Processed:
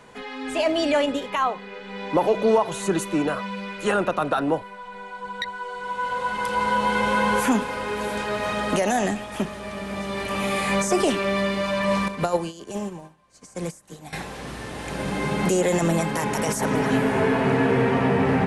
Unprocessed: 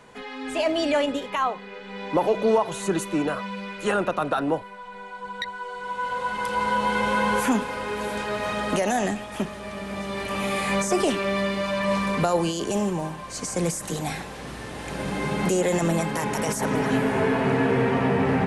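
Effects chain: 12.08–14.13 upward expander 2.5:1, over -36 dBFS; gain +1.5 dB

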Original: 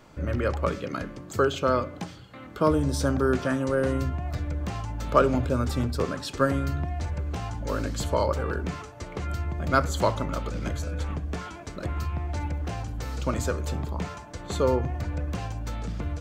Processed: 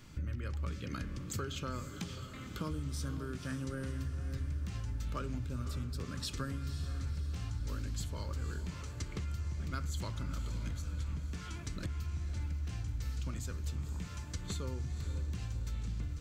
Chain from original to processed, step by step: passive tone stack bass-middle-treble 6-0-2; compressor, threshold -52 dBFS, peak gain reduction 15 dB; on a send: diffused feedback echo 0.525 s, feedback 52%, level -10 dB; on the sum: gain +16 dB

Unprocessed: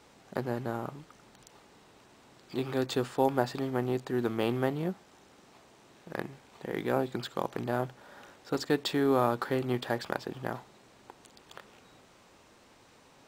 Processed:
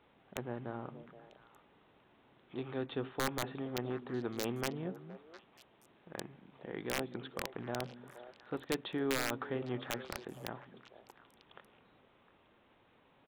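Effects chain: downsampling 8000 Hz; wrapped overs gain 16 dB; delay with a stepping band-pass 0.236 s, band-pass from 200 Hz, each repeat 1.4 oct, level -8 dB; gain -8 dB

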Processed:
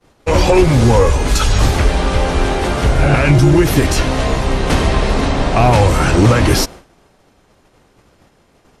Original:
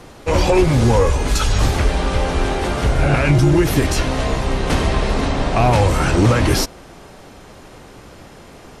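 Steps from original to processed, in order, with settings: expander -29 dBFS; gain +3.5 dB

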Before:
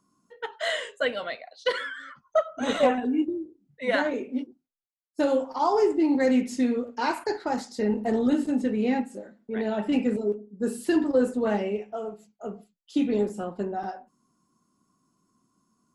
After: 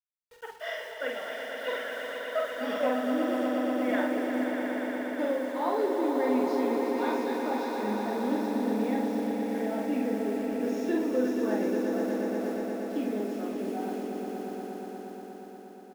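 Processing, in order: nonlinear frequency compression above 2600 Hz 1.5:1; HPF 210 Hz 24 dB/oct; high shelf 3600 Hz -4.5 dB; requantised 8-bit, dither none; doubler 47 ms -3.5 dB; on a send: swelling echo 0.119 s, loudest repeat 5, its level -7 dB; on the sum: gain -8 dB

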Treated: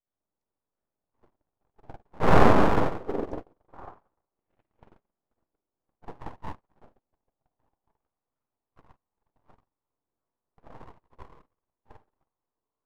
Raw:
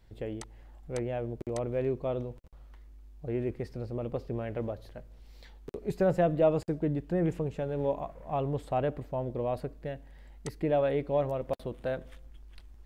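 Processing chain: repeated pitch sweeps -5.5 st, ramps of 0.209 s; wind noise 480 Hz -29 dBFS; recorder AGC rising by 13 dB/s; spectral gate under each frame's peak -20 dB strong; bell 120 Hz -11 dB 0.79 oct; in parallel at -0.5 dB: compressor 20:1, threshold -37 dBFS, peak gain reduction 28 dB; on the sum: tremolo 1.6 Hz, depth 31%; spring tank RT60 2.7 s, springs 45/55 ms, chirp 25 ms, DRR -3 dB; full-wave rectifier; on a send: delay with a stepping band-pass 0.726 s, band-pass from 370 Hz, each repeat 1.4 oct, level -1.5 dB; on the sum: gate -19 dBFS, range -59 dB; gain -1 dB

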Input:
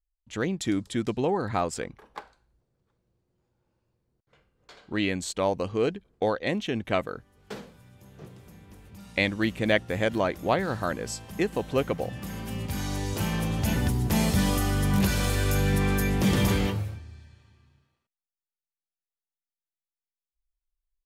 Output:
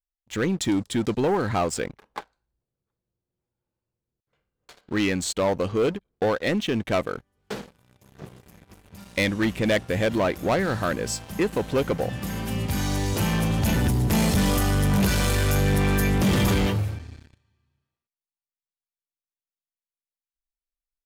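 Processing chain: sample leveller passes 3; gain -5.5 dB

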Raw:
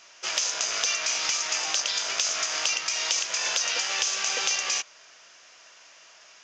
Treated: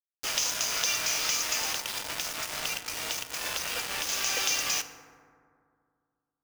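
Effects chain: 1.73–4.09 high shelf 4200 Hz -11.5 dB; bit-crush 5-bit; FDN reverb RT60 2.2 s, low-frequency decay 1.2×, high-frequency decay 0.35×, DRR 9 dB; gain -2.5 dB

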